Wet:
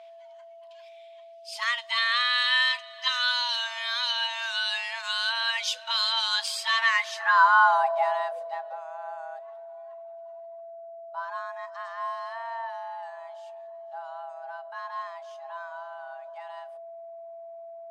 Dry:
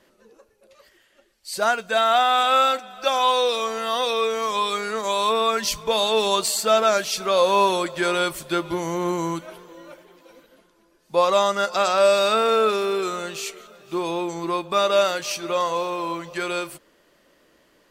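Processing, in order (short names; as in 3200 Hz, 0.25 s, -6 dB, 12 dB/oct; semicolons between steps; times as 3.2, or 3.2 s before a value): frequency shift +470 Hz; whine 670 Hz -28 dBFS; band-pass sweep 3100 Hz -> 240 Hz, 6.66–8.85; gain +3.5 dB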